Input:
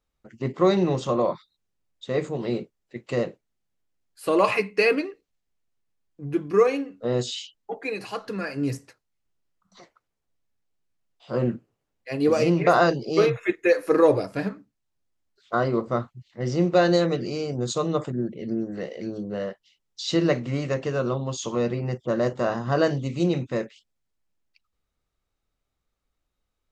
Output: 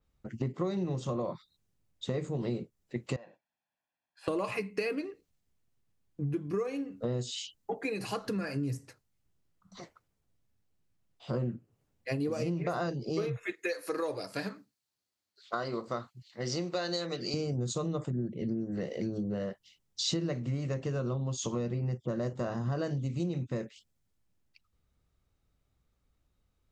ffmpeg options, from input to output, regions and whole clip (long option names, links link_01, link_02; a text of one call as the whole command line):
ffmpeg -i in.wav -filter_complex "[0:a]asettb=1/sr,asplit=3[link_01][link_02][link_03];[link_01]atrim=end=3.164[link_04];[link_02]atrim=start=3.16:end=4.28,asetpts=PTS-STARTPTS,afade=type=in:duration=0.004:curve=qsin,afade=type=out:start_time=1.116:duration=0.004:curve=qsin,highpass=590,lowpass=2800,aecho=1:1:1.2:0.71,atrim=end_sample=49392,acompressor=threshold=-45dB:ratio=2.5:attack=3.2:release=140:knee=1:detection=peak[link_05];[link_03]atrim=start=4.276[link_06];[link_04][link_05]acrossfade=duration=0.004:curve1=hsin:curve2=qsin[link_07];[link_07][link_06]acrossfade=duration=0.004:curve1=qsin:curve2=hsin,asettb=1/sr,asplit=3[link_08][link_09][link_10];[link_08]atrim=end=13.464[link_11];[link_09]atrim=start=13.46:end=17.34,asetpts=PTS-STARTPTS,afade=type=in:duration=0.004:curve=qsin,afade=type=out:start_time=3.876:duration=0.004:curve=qsin,highpass=frequency=950:poles=1,equalizer=frequency=4400:width_type=o:width=0.36:gain=7.5[link_12];[link_10]atrim=start=17.336[link_13];[link_11][link_12]acrossfade=duration=0.004:curve1=hsin:curve2=qsin[link_14];[link_14][link_13]acrossfade=duration=0.004:curve1=qsin:curve2=hsin,equalizer=frequency=99:width_type=o:width=2.8:gain=10.5,acompressor=threshold=-31dB:ratio=6,adynamicequalizer=threshold=0.00126:dfrequency=5400:dqfactor=0.7:tfrequency=5400:tqfactor=0.7:attack=5:release=100:ratio=0.375:range=3.5:mode=boostabove:tftype=highshelf" out.wav